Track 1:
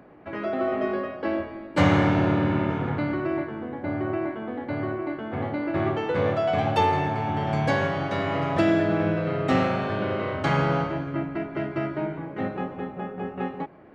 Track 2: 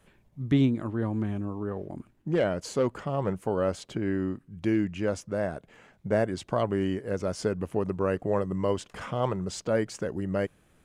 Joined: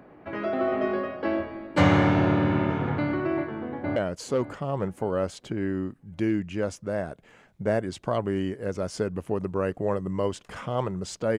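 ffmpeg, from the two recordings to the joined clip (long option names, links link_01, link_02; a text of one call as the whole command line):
ffmpeg -i cue0.wav -i cue1.wav -filter_complex "[0:a]apad=whole_dur=11.38,atrim=end=11.38,atrim=end=3.962[link_01];[1:a]atrim=start=2.408:end=9.83[link_02];[link_01][link_02]acrossfade=duration=0.004:curve1=hsin:curve2=hsin,asplit=2[link_03][link_04];[link_04]afade=type=in:start_time=3.7:duration=0.01,afade=type=out:start_time=3.96:duration=0.01,aecho=0:1:570|1140|1710|2280:0.211349|0.0845396|0.0338158|0.0135263[link_05];[link_03][link_05]amix=inputs=2:normalize=0" out.wav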